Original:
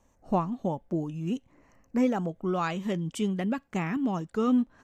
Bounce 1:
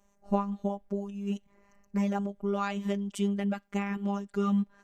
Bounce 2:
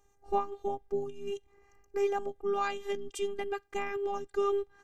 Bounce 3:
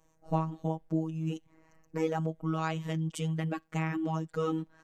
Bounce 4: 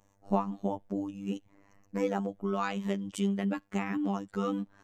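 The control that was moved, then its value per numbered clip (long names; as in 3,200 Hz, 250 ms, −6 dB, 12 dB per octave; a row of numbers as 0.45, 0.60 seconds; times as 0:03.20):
phases set to zero, frequency: 200, 400, 160, 99 Hertz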